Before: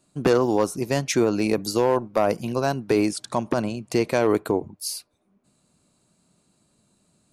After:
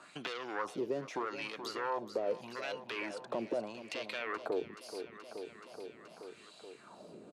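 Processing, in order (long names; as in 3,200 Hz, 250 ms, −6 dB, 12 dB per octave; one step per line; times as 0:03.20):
soft clipping −18.5 dBFS, distortion −11 dB
brickwall limiter −23.5 dBFS, peak gain reduction 5 dB
LFO wah 0.8 Hz 410–3,600 Hz, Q 2.8
repeating echo 427 ms, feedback 52%, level −15.5 dB
multiband upward and downward compressor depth 70%
level +4 dB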